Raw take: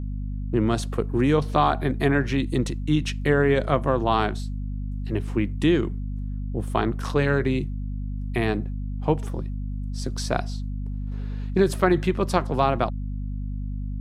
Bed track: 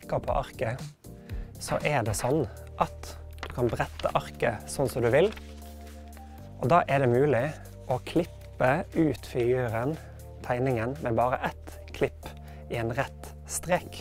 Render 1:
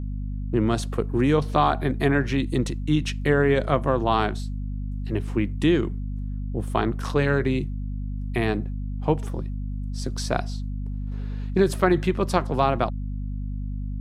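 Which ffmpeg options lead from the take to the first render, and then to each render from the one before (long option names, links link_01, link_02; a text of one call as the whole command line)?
ffmpeg -i in.wav -af anull out.wav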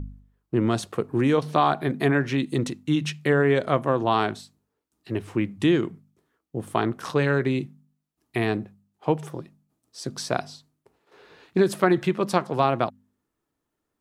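ffmpeg -i in.wav -af "bandreject=frequency=50:width_type=h:width=4,bandreject=frequency=100:width_type=h:width=4,bandreject=frequency=150:width_type=h:width=4,bandreject=frequency=200:width_type=h:width=4,bandreject=frequency=250:width_type=h:width=4" out.wav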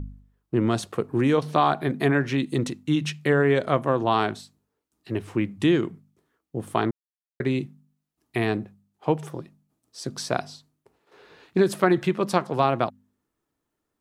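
ffmpeg -i in.wav -filter_complex "[0:a]asplit=3[link_01][link_02][link_03];[link_01]atrim=end=6.91,asetpts=PTS-STARTPTS,afade=type=out:start_time=6.906:duration=0.004:curve=hsin[link_04];[link_02]atrim=start=6.91:end=7.4,asetpts=PTS-STARTPTS,volume=0[link_05];[link_03]atrim=start=7.4,asetpts=PTS-STARTPTS,afade=type=in:duration=0.004:curve=hsin[link_06];[link_04][link_05][link_06]concat=n=3:v=0:a=1" out.wav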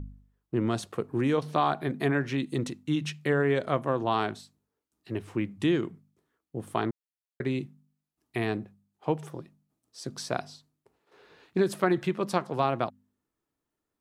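ffmpeg -i in.wav -af "volume=-5dB" out.wav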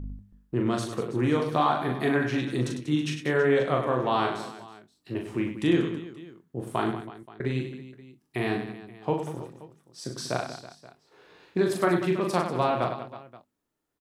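ffmpeg -i in.wav -filter_complex "[0:a]asplit=2[link_01][link_02];[link_02]adelay=24,volume=-11dB[link_03];[link_01][link_03]amix=inputs=2:normalize=0,aecho=1:1:40|100|190|325|527.5:0.631|0.398|0.251|0.158|0.1" out.wav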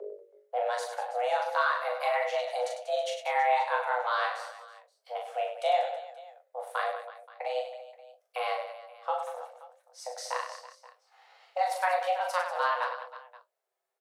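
ffmpeg -i in.wav -af "flanger=delay=6.3:depth=8.5:regen=-45:speed=1.3:shape=sinusoidal,afreqshift=370" out.wav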